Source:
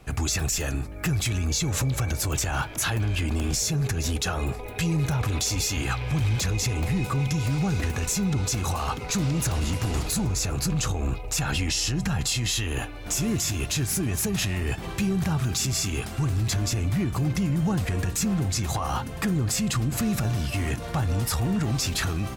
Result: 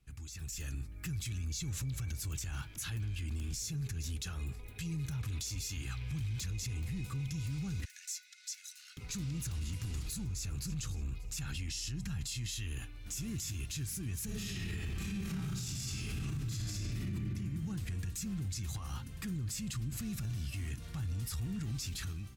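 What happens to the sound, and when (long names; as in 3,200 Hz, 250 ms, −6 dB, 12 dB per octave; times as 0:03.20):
0:07.85–0:08.97: Chebyshev high-pass with heavy ripple 1,400 Hz, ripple 6 dB
0:10.30–0:10.80: delay throw 290 ms, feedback 35%, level −16 dB
0:14.25–0:17.12: thrown reverb, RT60 1.7 s, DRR −11 dB
whole clip: guitar amp tone stack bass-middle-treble 6-0-2; brickwall limiter −35 dBFS; automatic gain control gain up to 9 dB; level −5 dB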